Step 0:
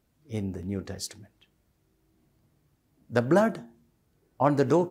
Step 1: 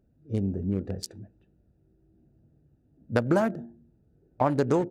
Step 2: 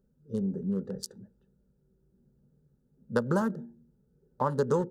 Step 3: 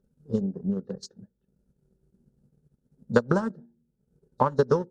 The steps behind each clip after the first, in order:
adaptive Wiener filter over 41 samples; downward compressor 3 to 1, threshold −28 dBFS, peak gain reduction 9 dB; level +6 dB
phaser with its sweep stopped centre 460 Hz, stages 8
hearing-aid frequency compression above 3,600 Hz 1.5 to 1; transient designer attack +8 dB, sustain −10 dB

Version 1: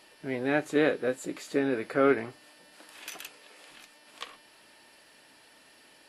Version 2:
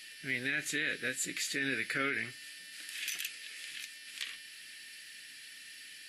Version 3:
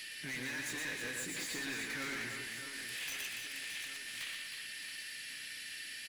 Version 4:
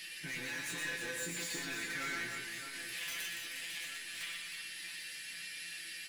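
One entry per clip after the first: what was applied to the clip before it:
drawn EQ curve 170 Hz 0 dB, 970 Hz −16 dB, 1,800 Hz +13 dB; brickwall limiter −18.5 dBFS, peak gain reduction 10.5 dB; level −4 dB
soft clipping −39.5 dBFS, distortion −5 dB; reverse bouncing-ball delay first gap 120 ms, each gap 1.6×, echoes 5; multiband upward and downward compressor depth 40%; level +1 dB
tuned comb filter 170 Hz, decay 0.2 s, harmonics all, mix 90%; level +9.5 dB

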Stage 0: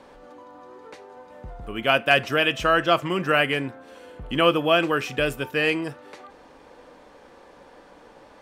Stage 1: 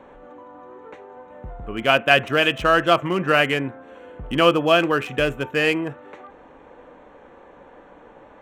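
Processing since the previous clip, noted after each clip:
adaptive Wiener filter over 9 samples
level +3 dB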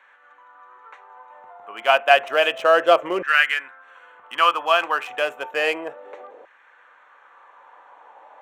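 auto-filter high-pass saw down 0.31 Hz 460–1,700 Hz
level −2.5 dB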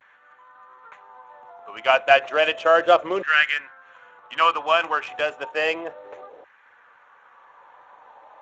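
pitch vibrato 0.39 Hz 38 cents
level −1 dB
Speex 17 kbit/s 16,000 Hz

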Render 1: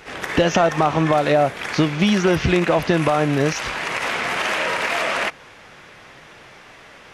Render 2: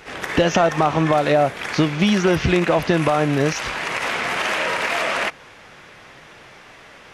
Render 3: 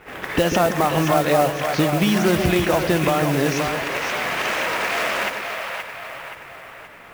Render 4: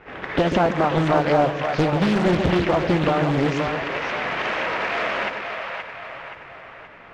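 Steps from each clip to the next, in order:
no processing that can be heard
echo with a time of its own for lows and highs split 500 Hz, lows 138 ms, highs 524 ms, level −5.5 dB; low-pass that shuts in the quiet parts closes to 2,200 Hz, open at −15 dBFS; noise that follows the level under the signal 17 dB; level −2 dB
high-frequency loss of the air 200 metres; highs frequency-modulated by the lows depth 0.93 ms

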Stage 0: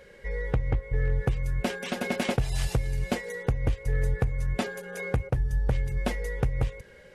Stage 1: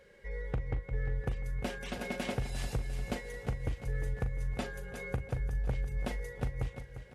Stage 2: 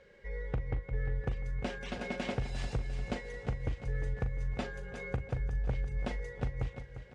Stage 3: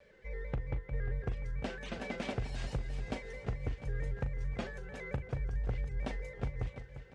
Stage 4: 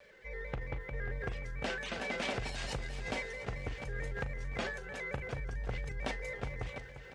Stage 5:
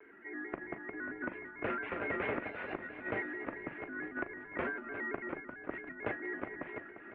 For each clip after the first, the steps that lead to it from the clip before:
double-tracking delay 40 ms −11.5 dB; on a send: repeating echo 350 ms, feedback 51%, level −11 dB; on the sum: level −8.5 dB
Bessel low-pass filter 5,600 Hz, order 8
pitch modulation by a square or saw wave square 4.5 Hz, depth 100 cents; level −2 dB
transient designer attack −1 dB, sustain +6 dB; low-shelf EQ 460 Hz −10.5 dB; level +6 dB
single-sideband voice off tune −150 Hz 310–2,400 Hz; level +2.5 dB

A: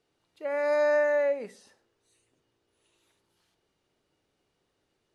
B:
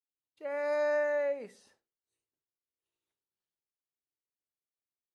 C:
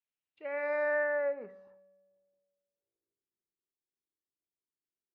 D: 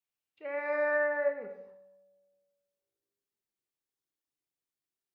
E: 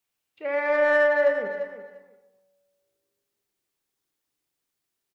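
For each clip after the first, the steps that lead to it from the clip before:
downward expander −59 dBFS; level −5.5 dB
tuned comb filter 190 Hz, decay 1.6 s, mix 60%; low-pass filter sweep 2,700 Hz → 360 Hz, 0:00.37–0:03.34; level +5 dB
reverb whose tail is shaped and stops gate 310 ms falling, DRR 5.5 dB
in parallel at −7.5 dB: soft clipping −32.5 dBFS, distortion −8 dB; on the sum: repeating echo 346 ms, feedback 17%, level −11 dB; level +7 dB

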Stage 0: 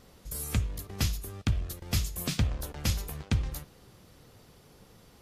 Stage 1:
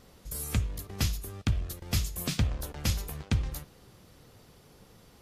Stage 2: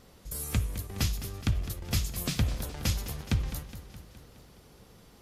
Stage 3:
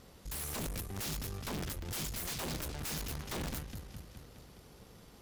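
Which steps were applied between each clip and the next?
no processing that can be heard
feedback echo with a swinging delay time 209 ms, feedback 61%, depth 72 cents, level −12.5 dB
wrap-around overflow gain 29 dB; tube saturation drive 38 dB, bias 0.65; level +2.5 dB

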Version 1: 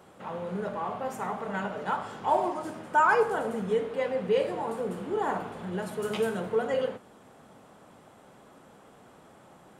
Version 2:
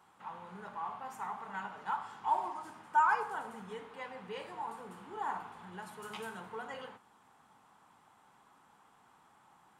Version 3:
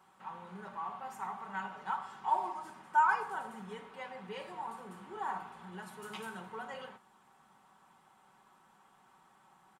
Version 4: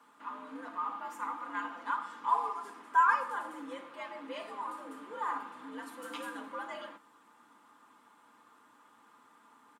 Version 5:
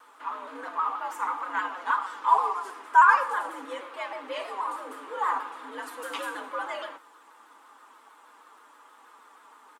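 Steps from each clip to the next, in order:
low shelf with overshoot 720 Hz −6.5 dB, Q 3; level −9 dB
comb filter 5.3 ms, depth 48%; level −1 dB
frequency shifter +88 Hz; hollow resonant body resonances 210/1,200 Hz, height 6 dB; level +1.5 dB
high-pass filter 360 Hz 24 dB per octave; pitch modulation by a square or saw wave saw down 6.3 Hz, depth 100 cents; level +8 dB

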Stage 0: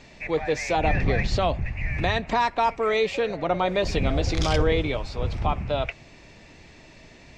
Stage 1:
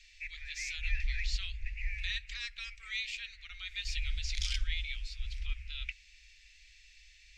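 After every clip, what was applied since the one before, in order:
inverse Chebyshev band-stop filter 120–940 Hz, stop band 50 dB
level −5 dB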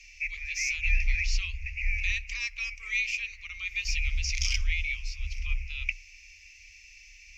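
EQ curve with evenly spaced ripples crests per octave 0.79, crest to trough 16 dB
level +3.5 dB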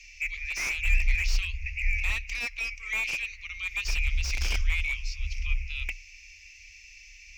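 slew-rate limiting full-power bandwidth 97 Hz
level +2 dB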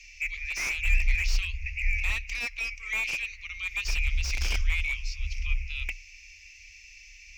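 no processing that can be heard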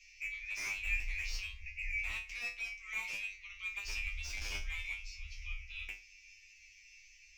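tuned comb filter 100 Hz, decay 0.28 s, harmonics all, mix 100%

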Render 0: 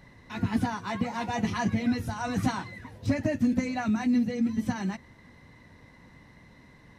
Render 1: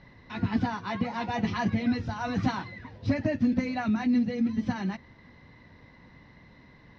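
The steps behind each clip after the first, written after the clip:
Butterworth low-pass 5,300 Hz 36 dB per octave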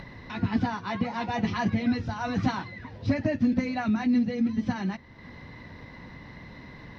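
upward compression, threshold −36 dBFS
level +1 dB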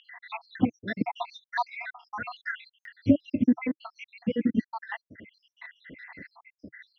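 time-frequency cells dropped at random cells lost 82%
loudspeaker in its box 130–4,300 Hz, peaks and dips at 140 Hz −8 dB, 310 Hz +5 dB, 1,800 Hz +4 dB
buffer that repeats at 0:02.80, samples 256, times 8
level +5 dB

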